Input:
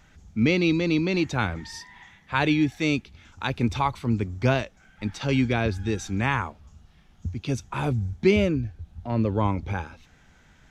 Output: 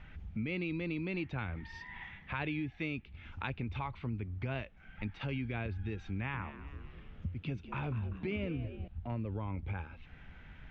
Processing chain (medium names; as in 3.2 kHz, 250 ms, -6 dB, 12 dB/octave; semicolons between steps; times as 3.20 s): bass shelf 140 Hz +9.5 dB; peak limiter -13 dBFS, peak gain reduction 7 dB; compression 2.5:1, threshold -40 dBFS, peak gain reduction 15 dB; four-pole ladder low-pass 3.2 kHz, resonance 40%; 6.14–8.88 s: frequency-shifting echo 196 ms, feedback 53%, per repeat +76 Hz, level -13 dB; trim +6.5 dB